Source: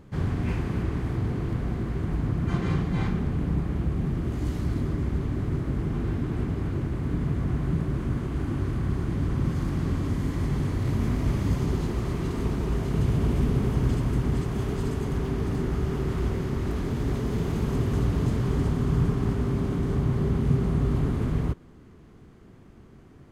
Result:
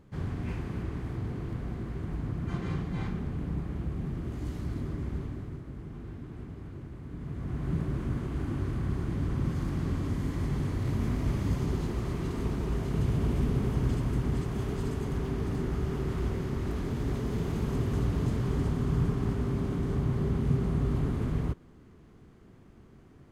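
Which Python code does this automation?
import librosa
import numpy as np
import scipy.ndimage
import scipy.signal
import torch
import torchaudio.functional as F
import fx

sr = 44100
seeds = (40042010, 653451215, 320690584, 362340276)

y = fx.gain(x, sr, db=fx.line((5.19, -7.0), (5.63, -14.0), (7.1, -14.0), (7.75, -4.0)))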